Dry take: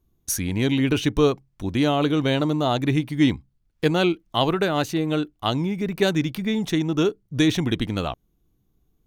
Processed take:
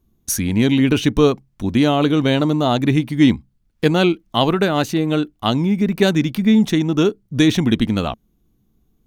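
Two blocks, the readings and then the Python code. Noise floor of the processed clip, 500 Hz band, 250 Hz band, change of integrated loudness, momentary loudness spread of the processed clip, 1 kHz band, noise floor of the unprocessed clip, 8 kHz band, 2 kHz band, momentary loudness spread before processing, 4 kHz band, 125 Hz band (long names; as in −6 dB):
−64 dBFS, +4.5 dB, +6.5 dB, +5.5 dB, 6 LU, +4.0 dB, −69 dBFS, +4.0 dB, +4.0 dB, 6 LU, +4.0 dB, +5.0 dB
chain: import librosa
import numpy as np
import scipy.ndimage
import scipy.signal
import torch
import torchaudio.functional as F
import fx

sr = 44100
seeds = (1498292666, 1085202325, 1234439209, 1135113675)

y = fx.peak_eq(x, sr, hz=220.0, db=8.0, octaves=0.37)
y = F.gain(torch.from_numpy(y), 4.0).numpy()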